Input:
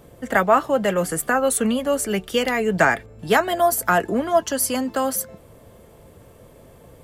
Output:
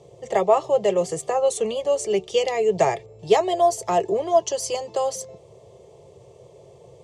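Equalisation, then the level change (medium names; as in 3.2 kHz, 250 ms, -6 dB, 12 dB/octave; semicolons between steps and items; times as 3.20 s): cabinet simulation 110–7400 Hz, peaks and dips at 130 Hz +6 dB, 390 Hz +10 dB, 6.3 kHz +4 dB; static phaser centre 620 Hz, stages 4; 0.0 dB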